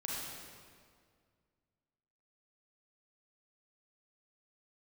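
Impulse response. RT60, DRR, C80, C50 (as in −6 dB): 2.0 s, −5.0 dB, −0.5 dB, −3.0 dB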